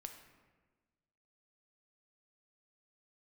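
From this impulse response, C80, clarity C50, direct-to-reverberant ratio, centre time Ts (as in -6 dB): 9.5 dB, 7.5 dB, 4.5 dB, 24 ms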